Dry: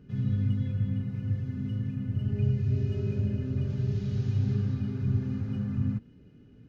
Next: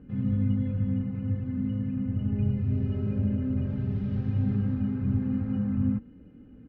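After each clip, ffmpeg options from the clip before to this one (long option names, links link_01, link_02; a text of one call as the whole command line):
ffmpeg -i in.wav -af "lowpass=1700,aecho=1:1:3.8:0.56,volume=3.5dB" out.wav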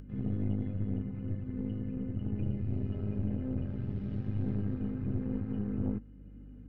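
ffmpeg -i in.wav -af "aeval=exprs='(tanh(12.6*val(0)+0.75)-tanh(0.75))/12.6':channel_layout=same,aeval=exprs='val(0)+0.00398*(sin(2*PI*50*n/s)+sin(2*PI*2*50*n/s)/2+sin(2*PI*3*50*n/s)/3+sin(2*PI*4*50*n/s)/4+sin(2*PI*5*50*n/s)/5)':channel_layout=same,acompressor=mode=upward:threshold=-41dB:ratio=2.5,volume=-2.5dB" out.wav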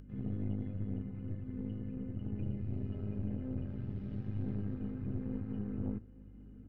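ffmpeg -i in.wav -af "aecho=1:1:864:0.0944,volume=-4.5dB" out.wav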